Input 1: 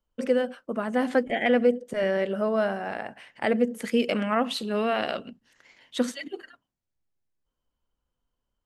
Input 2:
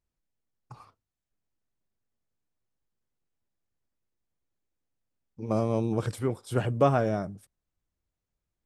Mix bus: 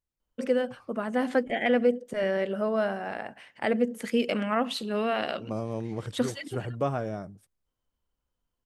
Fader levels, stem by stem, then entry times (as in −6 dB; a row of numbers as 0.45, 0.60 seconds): −2.0, −6.0 decibels; 0.20, 0.00 seconds